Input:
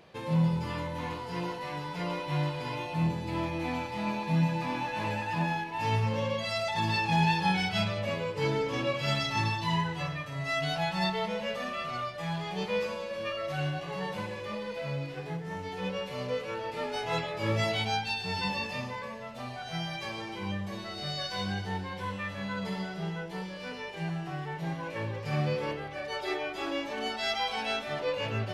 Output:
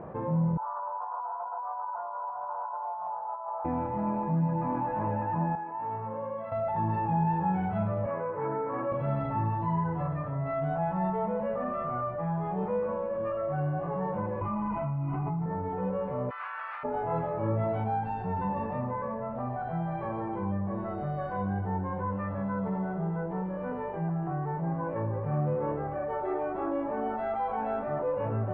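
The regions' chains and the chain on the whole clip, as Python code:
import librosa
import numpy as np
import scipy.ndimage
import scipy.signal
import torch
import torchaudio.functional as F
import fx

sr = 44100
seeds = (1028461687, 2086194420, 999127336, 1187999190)

y = fx.chain(x, sr, fx.ellip_bandpass(low_hz=670.0, high_hz=1400.0, order=3, stop_db=50),
    fx.over_compress(threshold_db=-42.0, ratio=-0.5),
    fx.transformer_sat(knee_hz=760.0), at=(0.57, 3.65))
y = fx.chain(y, sr, fx.highpass(hz=1400.0, slope=6),
    fx.spacing_loss(db_at_10k=37), at=(5.55, 6.52))
y = fx.chain(y, sr, fx.lowpass(hz=2000.0, slope=24),
    fx.tilt_eq(slope=4.5), at=(8.06, 8.92))
y = fx.chain(y, sr, fx.fixed_phaser(hz=2500.0, stages=8),
    fx.env_flatten(amount_pct=100), at=(14.41, 15.46))
y = fx.spec_clip(y, sr, under_db=20, at=(16.29, 16.83), fade=0.02)
y = fx.highpass(y, sr, hz=1300.0, slope=24, at=(16.29, 16.83), fade=0.02)
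y = fx.over_compress(y, sr, threshold_db=-42.0, ratio=-1.0, at=(16.29, 16.83), fade=0.02)
y = scipy.signal.sosfilt(scipy.signal.butter(4, 1200.0, 'lowpass', fs=sr, output='sos'), y)
y = fx.peak_eq(y, sr, hz=420.0, db=-2.5, octaves=0.28)
y = fx.env_flatten(y, sr, amount_pct=50)
y = y * librosa.db_to_amplitude(-2.0)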